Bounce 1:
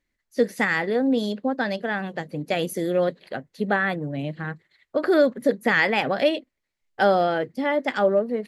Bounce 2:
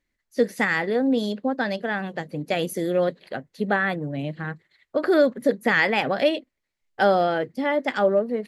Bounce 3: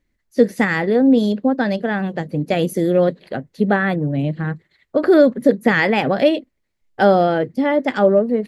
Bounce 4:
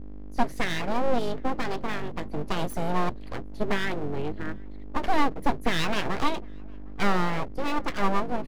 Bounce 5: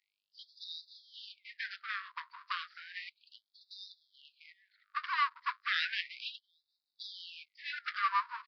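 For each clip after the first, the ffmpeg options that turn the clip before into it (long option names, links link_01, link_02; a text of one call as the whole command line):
ffmpeg -i in.wav -af anull out.wav
ffmpeg -i in.wav -af "lowshelf=frequency=500:gain=9.5,volume=1.5dB" out.wav
ffmpeg -i in.wav -filter_complex "[0:a]aeval=exprs='val(0)+0.0398*(sin(2*PI*50*n/s)+sin(2*PI*2*50*n/s)/2+sin(2*PI*3*50*n/s)/3+sin(2*PI*4*50*n/s)/4+sin(2*PI*5*50*n/s)/5)':channel_layout=same,aeval=exprs='abs(val(0))':channel_layout=same,asplit=2[link_01][link_02];[link_02]adelay=758,volume=-27dB,highshelf=frequency=4000:gain=-17.1[link_03];[link_01][link_03]amix=inputs=2:normalize=0,volume=-7.5dB" out.wav
ffmpeg -i in.wav -filter_complex "[0:a]acrossover=split=200|600|3300[link_01][link_02][link_03][link_04];[link_03]adynamicsmooth=sensitivity=3:basefreq=2300[link_05];[link_01][link_02][link_05][link_04]amix=inputs=4:normalize=0,aresample=11025,aresample=44100,afftfilt=real='re*gte(b*sr/1024,930*pow(3600/930,0.5+0.5*sin(2*PI*0.33*pts/sr)))':imag='im*gte(b*sr/1024,930*pow(3600/930,0.5+0.5*sin(2*PI*0.33*pts/sr)))':win_size=1024:overlap=0.75" out.wav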